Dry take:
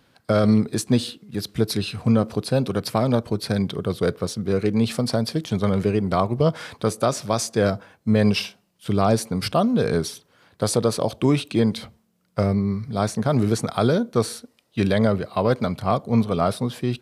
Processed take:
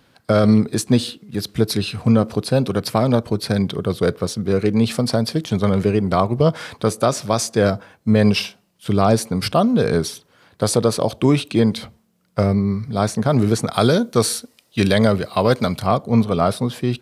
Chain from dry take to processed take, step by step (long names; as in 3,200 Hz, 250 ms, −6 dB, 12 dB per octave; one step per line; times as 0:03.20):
0:13.73–0:15.87: high-shelf EQ 2,800 Hz +8.5 dB
level +3.5 dB